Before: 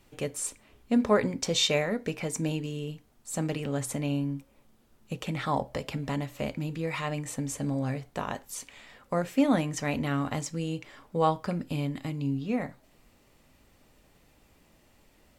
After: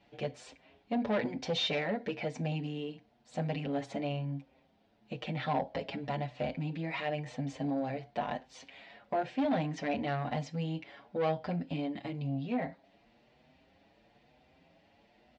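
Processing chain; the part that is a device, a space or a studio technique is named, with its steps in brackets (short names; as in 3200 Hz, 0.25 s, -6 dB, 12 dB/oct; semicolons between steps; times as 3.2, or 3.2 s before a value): barber-pole flanger into a guitar amplifier (endless flanger 6.7 ms +1 Hz; soft clip -27.5 dBFS, distortion -10 dB; speaker cabinet 90–4400 Hz, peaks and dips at 110 Hz -7 dB, 380 Hz -3 dB, 710 Hz +8 dB, 1200 Hz -8 dB); gain +1.5 dB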